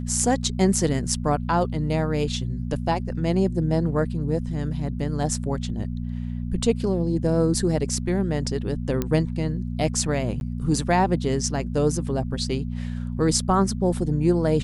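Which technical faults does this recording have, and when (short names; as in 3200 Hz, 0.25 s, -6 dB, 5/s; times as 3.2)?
hum 60 Hz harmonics 4 -29 dBFS
9.02 pop -11 dBFS
10.4–10.41 gap 11 ms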